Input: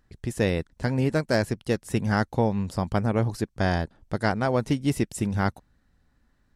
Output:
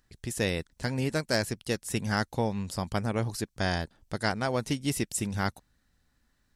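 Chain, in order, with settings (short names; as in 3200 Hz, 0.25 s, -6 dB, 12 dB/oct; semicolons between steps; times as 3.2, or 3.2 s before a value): high shelf 2300 Hz +11.5 dB; gain -6 dB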